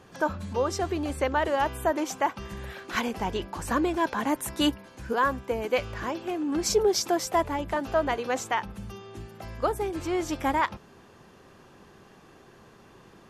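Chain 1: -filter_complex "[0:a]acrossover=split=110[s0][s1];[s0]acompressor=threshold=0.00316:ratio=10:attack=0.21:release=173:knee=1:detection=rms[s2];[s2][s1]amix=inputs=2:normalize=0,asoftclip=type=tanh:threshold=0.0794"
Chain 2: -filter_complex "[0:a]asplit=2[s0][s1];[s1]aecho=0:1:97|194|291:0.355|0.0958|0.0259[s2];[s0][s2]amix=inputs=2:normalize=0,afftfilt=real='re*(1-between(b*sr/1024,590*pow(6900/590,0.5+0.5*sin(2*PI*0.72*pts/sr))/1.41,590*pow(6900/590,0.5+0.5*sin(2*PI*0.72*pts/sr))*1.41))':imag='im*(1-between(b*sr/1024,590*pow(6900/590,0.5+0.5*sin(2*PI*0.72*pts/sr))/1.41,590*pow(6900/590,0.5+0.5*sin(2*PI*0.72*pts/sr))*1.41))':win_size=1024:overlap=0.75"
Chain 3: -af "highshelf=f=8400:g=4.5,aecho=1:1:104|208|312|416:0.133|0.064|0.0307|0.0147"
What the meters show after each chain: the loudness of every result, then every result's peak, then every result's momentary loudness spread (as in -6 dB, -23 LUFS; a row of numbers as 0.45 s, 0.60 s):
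-31.0 LUFS, -28.5 LUFS, -28.0 LUFS; -22.0 dBFS, -12.0 dBFS, -12.5 dBFS; 12 LU, 12 LU, 13 LU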